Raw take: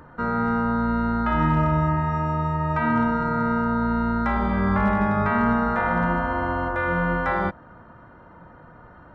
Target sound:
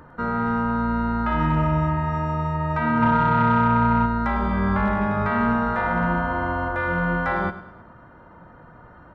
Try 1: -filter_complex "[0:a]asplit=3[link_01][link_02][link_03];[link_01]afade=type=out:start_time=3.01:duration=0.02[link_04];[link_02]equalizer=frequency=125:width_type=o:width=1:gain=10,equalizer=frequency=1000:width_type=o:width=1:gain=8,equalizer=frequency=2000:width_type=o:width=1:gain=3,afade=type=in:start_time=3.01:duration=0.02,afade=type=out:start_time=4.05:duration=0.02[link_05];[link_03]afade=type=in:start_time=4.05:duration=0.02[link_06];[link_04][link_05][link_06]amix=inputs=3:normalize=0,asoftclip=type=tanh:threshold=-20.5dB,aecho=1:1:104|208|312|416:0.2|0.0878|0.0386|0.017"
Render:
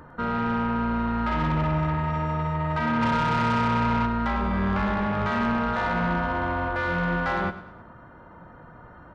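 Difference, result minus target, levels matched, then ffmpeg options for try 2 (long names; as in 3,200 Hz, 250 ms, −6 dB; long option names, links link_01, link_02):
soft clipping: distortion +11 dB
-filter_complex "[0:a]asplit=3[link_01][link_02][link_03];[link_01]afade=type=out:start_time=3.01:duration=0.02[link_04];[link_02]equalizer=frequency=125:width_type=o:width=1:gain=10,equalizer=frequency=1000:width_type=o:width=1:gain=8,equalizer=frequency=2000:width_type=o:width=1:gain=3,afade=type=in:start_time=3.01:duration=0.02,afade=type=out:start_time=4.05:duration=0.02[link_05];[link_03]afade=type=in:start_time=4.05:duration=0.02[link_06];[link_04][link_05][link_06]amix=inputs=3:normalize=0,asoftclip=type=tanh:threshold=-10.5dB,aecho=1:1:104|208|312|416:0.2|0.0878|0.0386|0.017"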